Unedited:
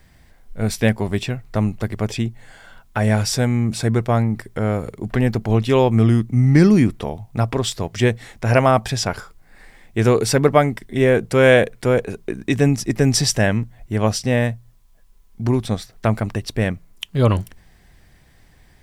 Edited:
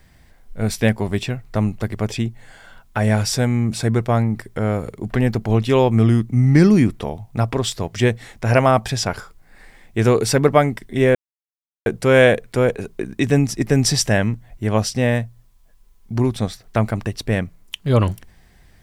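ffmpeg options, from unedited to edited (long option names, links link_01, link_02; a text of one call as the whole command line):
ffmpeg -i in.wav -filter_complex "[0:a]asplit=2[link_01][link_02];[link_01]atrim=end=11.15,asetpts=PTS-STARTPTS,afade=type=out:start_time=11.146:duration=0.004:curve=hsin,apad=pad_dur=0.71[link_03];[link_02]atrim=start=11.15,asetpts=PTS-STARTPTS,afade=type=in:duration=0.004:curve=hsin[link_04];[link_03][link_04]concat=n=2:v=0:a=1" out.wav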